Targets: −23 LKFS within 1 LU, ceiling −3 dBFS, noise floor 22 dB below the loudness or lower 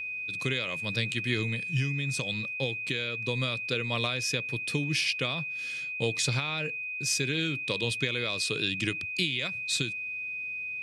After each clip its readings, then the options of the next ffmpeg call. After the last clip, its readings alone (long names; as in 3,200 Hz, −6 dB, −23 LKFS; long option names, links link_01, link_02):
interfering tone 2,500 Hz; level of the tone −33 dBFS; integrated loudness −29.5 LKFS; sample peak −13.0 dBFS; target loudness −23.0 LKFS
→ -af "bandreject=frequency=2500:width=30"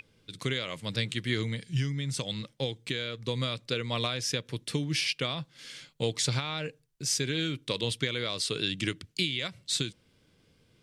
interfering tone none found; integrated loudness −31.5 LKFS; sample peak −14.0 dBFS; target loudness −23.0 LKFS
→ -af "volume=8.5dB"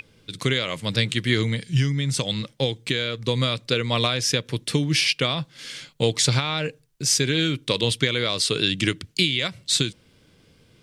integrated loudness −23.0 LKFS; sample peak −5.5 dBFS; background noise floor −58 dBFS